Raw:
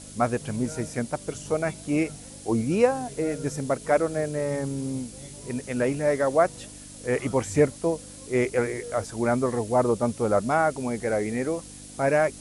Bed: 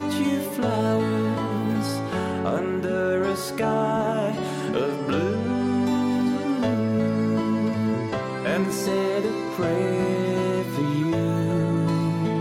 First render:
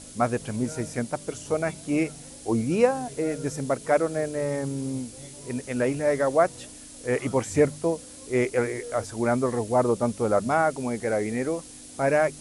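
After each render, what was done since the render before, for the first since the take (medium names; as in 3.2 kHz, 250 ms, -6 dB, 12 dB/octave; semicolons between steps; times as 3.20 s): de-hum 50 Hz, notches 4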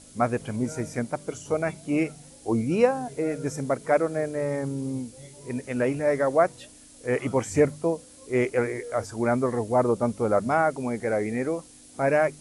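noise print and reduce 6 dB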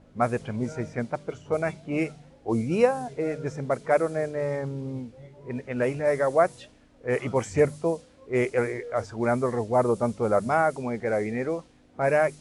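peaking EQ 280 Hz -7 dB 0.25 oct; level-controlled noise filter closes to 1.4 kHz, open at -19 dBFS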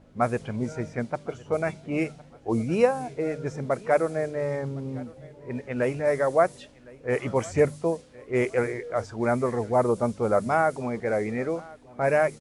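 feedback delay 1060 ms, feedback 33%, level -22.5 dB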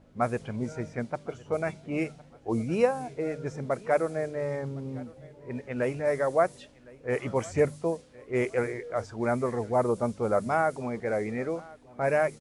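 trim -3 dB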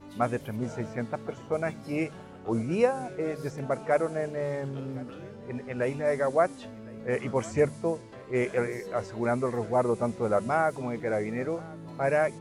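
add bed -21 dB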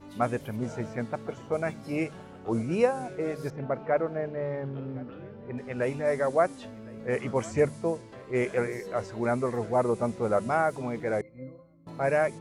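3.50–5.58 s: distance through air 310 m; 11.21–11.87 s: pitch-class resonator C, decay 0.26 s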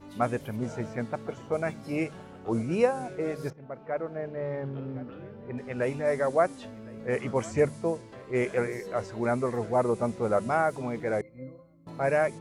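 3.53–4.59 s: fade in, from -15 dB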